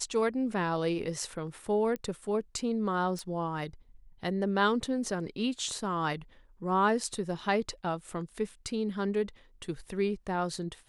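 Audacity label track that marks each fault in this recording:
1.960000	1.960000	pop -24 dBFS
3.190000	3.190000	pop -25 dBFS

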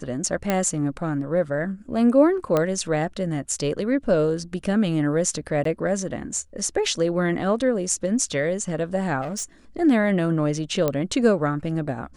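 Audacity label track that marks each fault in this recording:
0.500000	0.500000	pop -8 dBFS
2.570000	2.570000	pop -9 dBFS
5.640000	5.650000	gap 13 ms
9.210000	9.440000	clipped -25.5 dBFS
10.880000	10.880000	pop -9 dBFS

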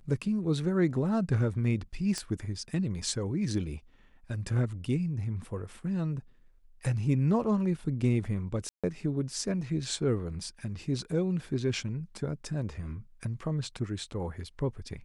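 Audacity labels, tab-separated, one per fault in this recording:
2.180000	2.180000	pop -19 dBFS
8.690000	8.840000	gap 0.146 s

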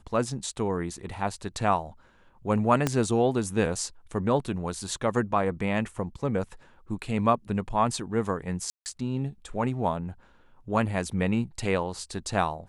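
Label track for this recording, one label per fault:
2.870000	2.870000	pop -10 dBFS
8.700000	8.860000	gap 0.159 s

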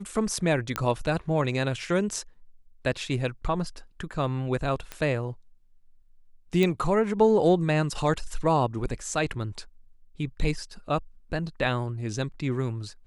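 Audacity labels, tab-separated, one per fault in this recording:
0.760000	0.760000	pop -11 dBFS
4.920000	4.920000	pop -18 dBFS
6.630000	6.630000	pop -13 dBFS

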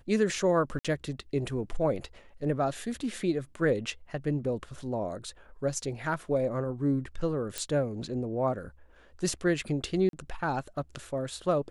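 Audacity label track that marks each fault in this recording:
0.790000	0.850000	gap 56 ms
7.580000	7.580000	pop -16 dBFS
10.090000	10.130000	gap 42 ms

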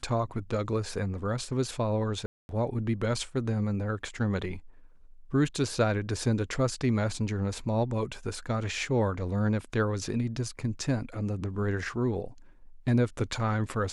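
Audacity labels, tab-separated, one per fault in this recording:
2.260000	2.490000	gap 0.231 s

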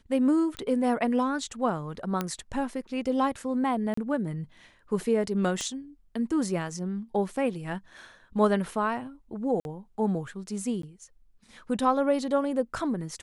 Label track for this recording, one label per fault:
0.570000	0.570000	pop -21 dBFS
2.210000	2.210000	pop -14 dBFS
3.940000	3.970000	gap 34 ms
5.610000	5.610000	pop -20 dBFS
9.600000	9.650000	gap 51 ms
10.820000	10.830000	gap 13 ms

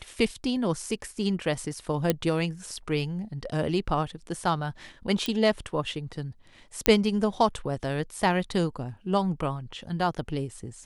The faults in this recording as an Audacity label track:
2.100000	2.100000	pop -8 dBFS
5.260000	5.260000	pop -14 dBFS
6.860000	6.860000	pop -3 dBFS

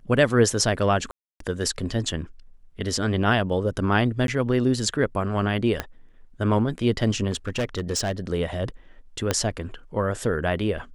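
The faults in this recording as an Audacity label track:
1.110000	1.400000	gap 0.293 s
4.270000	4.280000	gap
5.800000	5.800000	pop -11 dBFS
7.300000	8.120000	clipped -21 dBFS
9.310000	9.310000	pop -7 dBFS

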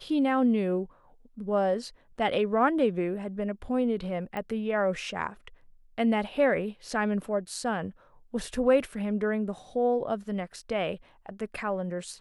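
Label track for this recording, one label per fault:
4.370000	4.370000	pop -22 dBFS

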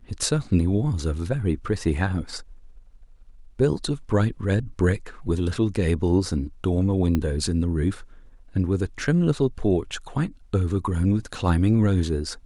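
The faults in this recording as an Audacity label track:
7.150000	7.150000	pop -12 dBFS

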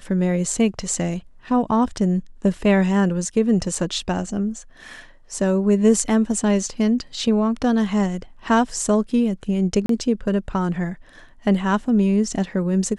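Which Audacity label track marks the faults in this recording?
3.750000	3.750000	gap 3.9 ms
9.860000	9.890000	gap 33 ms

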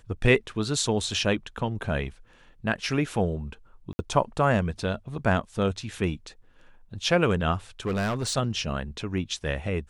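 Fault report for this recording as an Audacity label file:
3.930000	3.990000	gap 60 ms
7.860000	8.380000	clipped -23.5 dBFS

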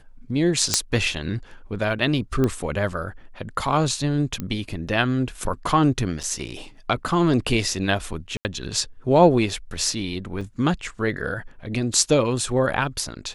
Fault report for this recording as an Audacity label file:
0.740000	0.740000	pop -2 dBFS
2.440000	2.440000	pop -11 dBFS
4.400000	4.400000	pop -15 dBFS
6.230000	6.240000	gap 5.9 ms
8.370000	8.450000	gap 79 ms
10.410000	10.410000	gap 4.4 ms

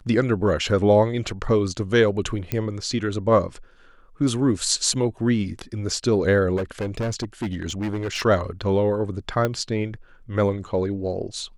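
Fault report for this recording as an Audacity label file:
2.520000	2.520000	pop -11 dBFS
6.560000	8.220000	clipped -22 dBFS
9.450000	9.450000	pop -10 dBFS

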